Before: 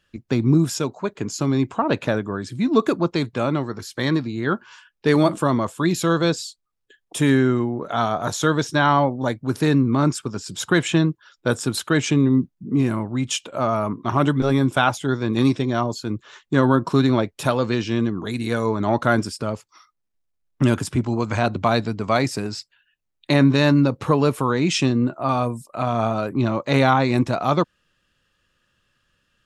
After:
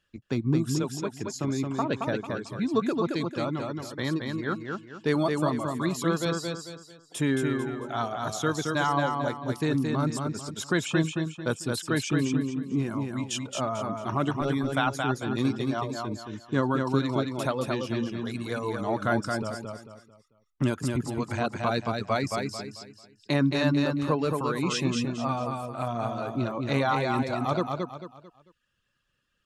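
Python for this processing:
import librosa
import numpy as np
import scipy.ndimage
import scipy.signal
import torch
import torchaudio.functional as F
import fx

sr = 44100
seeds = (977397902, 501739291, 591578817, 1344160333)

y = fx.dereverb_blind(x, sr, rt60_s=1.0)
y = fx.echo_feedback(y, sr, ms=222, feedback_pct=34, wet_db=-4.0)
y = y * librosa.db_to_amplitude(-7.5)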